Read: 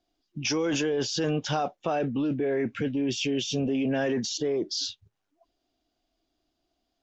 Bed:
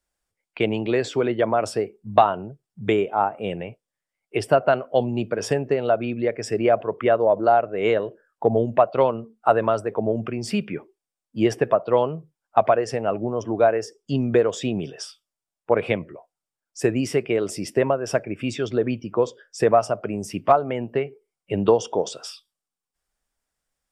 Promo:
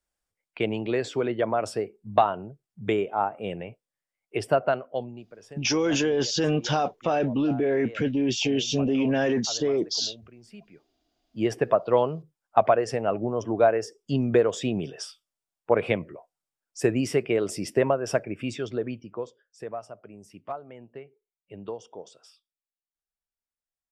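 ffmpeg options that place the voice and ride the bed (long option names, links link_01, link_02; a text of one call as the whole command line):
ffmpeg -i stem1.wav -i stem2.wav -filter_complex "[0:a]adelay=5200,volume=3dB[link_01];[1:a]volume=16dB,afade=type=out:start_time=4.63:duration=0.62:silence=0.125893,afade=type=in:start_time=10.92:duration=0.84:silence=0.0944061,afade=type=out:start_time=18.06:duration=1.37:silence=0.149624[link_02];[link_01][link_02]amix=inputs=2:normalize=0" out.wav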